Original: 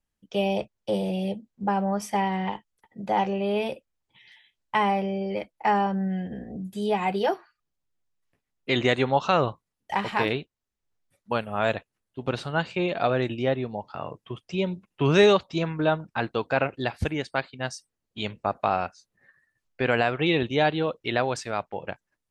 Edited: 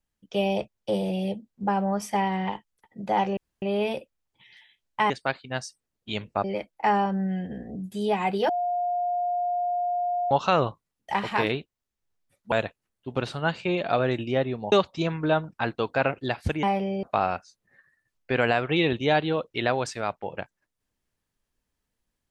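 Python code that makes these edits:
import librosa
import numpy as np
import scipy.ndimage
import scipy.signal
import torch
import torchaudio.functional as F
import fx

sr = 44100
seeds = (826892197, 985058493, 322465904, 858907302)

y = fx.edit(x, sr, fx.insert_room_tone(at_s=3.37, length_s=0.25),
    fx.swap(start_s=4.85, length_s=0.4, other_s=17.19, other_length_s=1.34),
    fx.bleep(start_s=7.3, length_s=1.82, hz=709.0, db=-23.5),
    fx.cut(start_s=11.33, length_s=0.3),
    fx.cut(start_s=13.83, length_s=1.45), tone=tone)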